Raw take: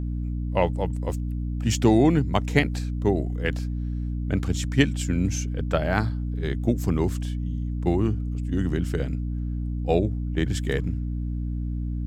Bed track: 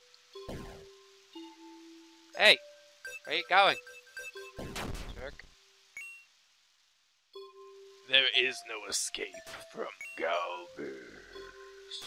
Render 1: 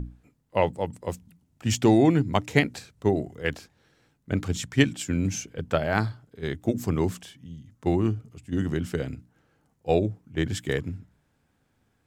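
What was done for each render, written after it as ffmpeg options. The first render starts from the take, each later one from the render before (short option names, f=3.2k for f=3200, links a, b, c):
-af "bandreject=f=60:t=h:w=6,bandreject=f=120:t=h:w=6,bandreject=f=180:t=h:w=6,bandreject=f=240:t=h:w=6,bandreject=f=300:t=h:w=6"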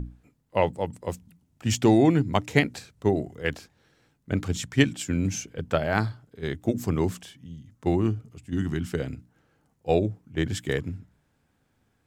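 -filter_complex "[0:a]asettb=1/sr,asplit=3[a][b][c];[a]atrim=end=8.524[d];[b]atrim=start=8.52:end=8.93,asetpts=PTS-STARTPTS,afade=t=in:d=0.004:c=qsin,afade=t=out:st=0.406:d=0.004:c=qsin,equalizer=f=520:w=3.3:g=-14.5[e];[c]atrim=start=8.926[f];[d][e]acrossfade=d=0.004:c1=hsin:c2=qsin[g];[g][f]acrossfade=d=0.004:c1=qsin:c2=hsin"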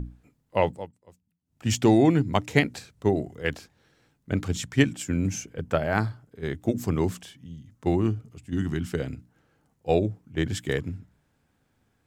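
-filter_complex "[0:a]asettb=1/sr,asplit=3[a][b][c];[a]atrim=end=4.804[d];[b]atrim=start=4.8:end=6.54,asetpts=PTS-STARTPTS,afade=t=in:d=0.004:c=qsin,afade=t=out:st=1.736:d=0.004:c=qsin,equalizer=f=3.8k:w=1.5:g=-5[e];[c]atrim=start=6.536[f];[d][e]acrossfade=d=0.004:c1=hsin:c2=qsin[g];[g][f]acrossfade=d=0.004:c1=qsin:c2=hsin,asplit=3[h][i][j];[h]atrim=end=0.91,asetpts=PTS-STARTPTS,afade=t=out:st=0.68:d=0.23:silence=0.0749894[k];[i]atrim=start=0.91:end=1.43,asetpts=PTS-STARTPTS,volume=-22.5dB[l];[j]atrim=start=1.43,asetpts=PTS-STARTPTS,afade=t=in:d=0.23:silence=0.0749894[m];[k][l][m]concat=n=3:v=0:a=1"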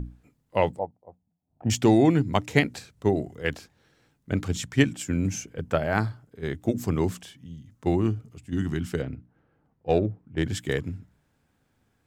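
-filter_complex "[0:a]asettb=1/sr,asplit=3[a][b][c];[a]atrim=end=0.794[d];[b]atrim=start=0.79:end=1.7,asetpts=PTS-STARTPTS,afade=t=in:d=0.004:c=qsin,afade=t=out:st=0.906:d=0.004:c=qsin,lowpass=f=740:t=q:w=4.7[e];[c]atrim=start=1.696[f];[d][e]acrossfade=d=0.004:c1=hsin:c2=qsin[g];[g][f]acrossfade=d=0.004:c1=qsin:c2=hsin,asettb=1/sr,asplit=3[h][i][j];[h]atrim=end=9.024[k];[i]atrim=start=9.02:end=10.43,asetpts=PTS-STARTPTS,afade=t=in:d=0.004:c=qsin,afade=t=out:st=1.406:d=0.004:c=qsin,adynamicsmooth=sensitivity=2:basefreq=2.2k[l];[j]atrim=start=10.426[m];[k][l]acrossfade=d=0.004:c1=hsin:c2=qsin[n];[n][m]acrossfade=d=0.004:c1=qsin:c2=hsin"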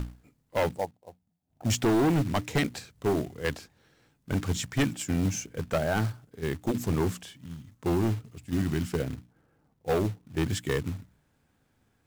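-af "volume=21dB,asoftclip=hard,volume=-21dB,acrusher=bits=4:mode=log:mix=0:aa=0.000001"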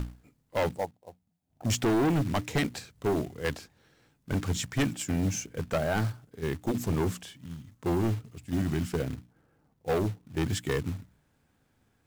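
-af "asoftclip=type=hard:threshold=-22.5dB"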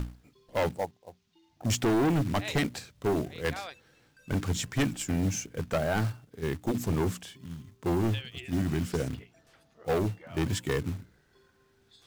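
-filter_complex "[1:a]volume=-17dB[a];[0:a][a]amix=inputs=2:normalize=0"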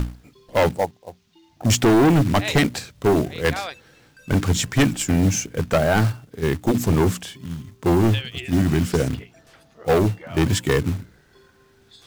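-af "volume=10dB"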